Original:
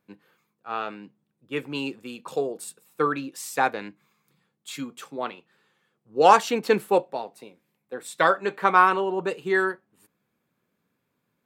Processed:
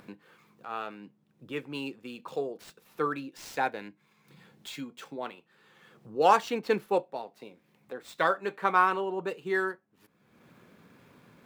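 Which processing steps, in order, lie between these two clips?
median filter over 5 samples; 3.22–5.26 notch 1200 Hz, Q 7; upward compressor, threshold -30 dBFS; gain -6 dB

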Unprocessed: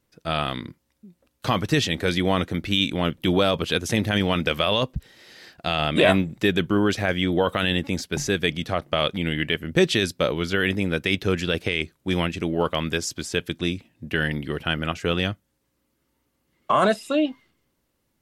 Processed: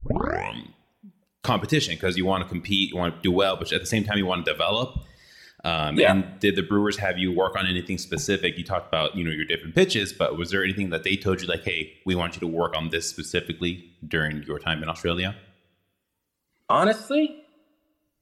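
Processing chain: tape start at the beginning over 0.62 s; reverb removal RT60 1.6 s; two-slope reverb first 0.59 s, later 1.8 s, from -21 dB, DRR 13.5 dB

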